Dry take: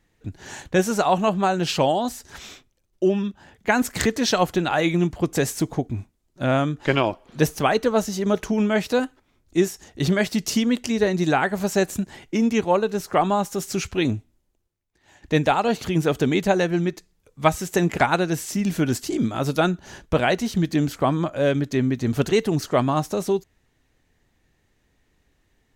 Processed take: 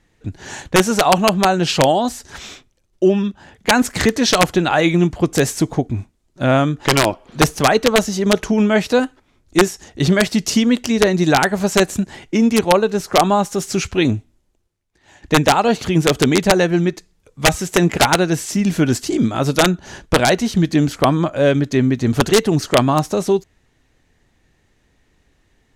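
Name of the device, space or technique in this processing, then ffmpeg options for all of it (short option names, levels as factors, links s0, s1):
overflowing digital effects unit: -af "aeval=exprs='(mod(2.82*val(0)+1,2)-1)/2.82':c=same,lowpass=11000,volume=2"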